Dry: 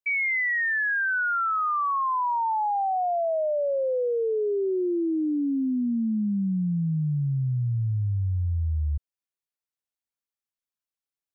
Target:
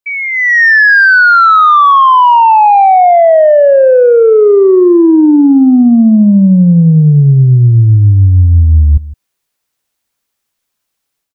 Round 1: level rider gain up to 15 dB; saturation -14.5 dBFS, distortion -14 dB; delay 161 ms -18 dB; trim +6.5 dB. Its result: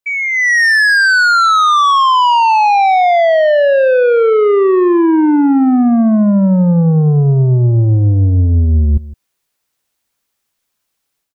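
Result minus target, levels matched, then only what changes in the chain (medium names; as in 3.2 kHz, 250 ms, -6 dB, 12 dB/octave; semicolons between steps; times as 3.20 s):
saturation: distortion +12 dB
change: saturation -5.5 dBFS, distortion -26 dB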